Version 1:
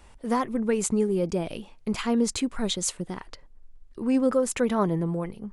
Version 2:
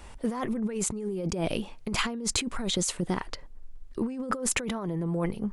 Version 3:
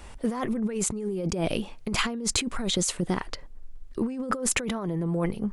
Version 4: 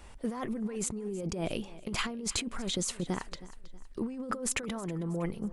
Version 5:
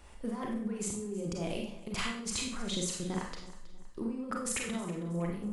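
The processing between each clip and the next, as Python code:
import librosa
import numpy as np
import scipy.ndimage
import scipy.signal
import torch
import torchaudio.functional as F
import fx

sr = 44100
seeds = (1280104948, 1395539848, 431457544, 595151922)

y1 = fx.over_compress(x, sr, threshold_db=-31.0, ratio=-1.0)
y1 = y1 * 10.0 ** (1.0 / 20.0)
y2 = fx.peak_eq(y1, sr, hz=930.0, db=-2.0, octaves=0.24)
y2 = y2 * 10.0 ** (2.0 / 20.0)
y3 = fx.echo_feedback(y2, sr, ms=320, feedback_pct=41, wet_db=-18)
y3 = y3 * 10.0 ** (-6.5 / 20.0)
y4 = fx.rev_schroeder(y3, sr, rt60_s=0.49, comb_ms=31, drr_db=0.0)
y4 = y4 * 10.0 ** (-4.5 / 20.0)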